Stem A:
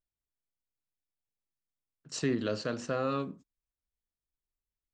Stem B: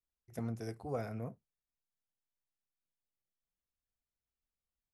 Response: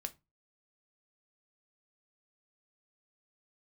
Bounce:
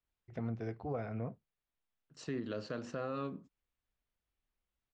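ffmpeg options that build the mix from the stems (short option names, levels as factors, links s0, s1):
-filter_complex "[0:a]aemphasis=mode=reproduction:type=50fm,adelay=50,volume=1[s0];[1:a]acontrast=76,lowpass=f=3600:w=0.5412,lowpass=f=3600:w=1.3066,volume=0.75,asplit=2[s1][s2];[s2]apad=whole_len=219948[s3];[s0][s3]sidechaincompress=threshold=0.00251:ratio=5:attack=7.5:release=1190[s4];[s4][s1]amix=inputs=2:normalize=0,alimiter=level_in=1.68:limit=0.0631:level=0:latency=1:release=383,volume=0.596"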